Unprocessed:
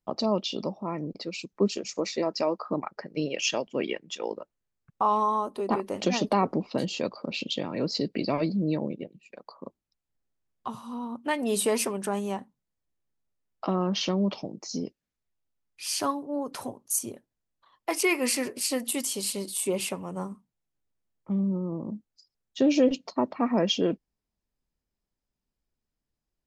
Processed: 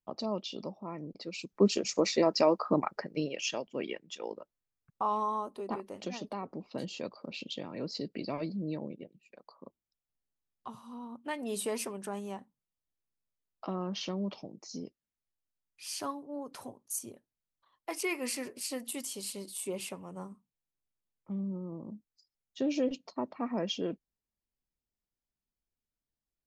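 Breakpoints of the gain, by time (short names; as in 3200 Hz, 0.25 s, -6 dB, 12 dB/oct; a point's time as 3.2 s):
1.12 s -8.5 dB
1.77 s +2 dB
2.96 s +2 dB
3.36 s -7 dB
5.4 s -7 dB
6.45 s -16 dB
6.81 s -9 dB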